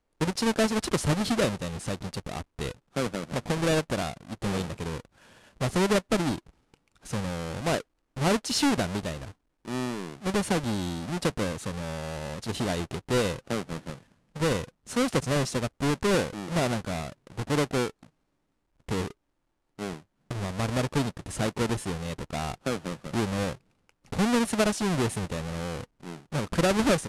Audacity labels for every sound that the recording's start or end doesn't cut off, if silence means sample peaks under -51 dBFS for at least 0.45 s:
18.880000	19.120000	sound